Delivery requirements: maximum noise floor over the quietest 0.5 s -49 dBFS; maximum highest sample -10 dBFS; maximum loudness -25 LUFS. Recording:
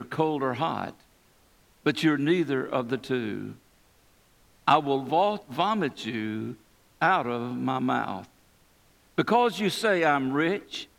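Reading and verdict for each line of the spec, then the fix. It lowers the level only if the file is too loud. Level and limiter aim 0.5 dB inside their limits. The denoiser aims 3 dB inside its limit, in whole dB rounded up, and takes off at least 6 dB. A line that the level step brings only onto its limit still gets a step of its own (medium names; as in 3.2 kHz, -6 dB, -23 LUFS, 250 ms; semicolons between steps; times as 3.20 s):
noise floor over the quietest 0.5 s -61 dBFS: pass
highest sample -8.0 dBFS: fail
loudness -26.5 LUFS: pass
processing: peak limiter -10.5 dBFS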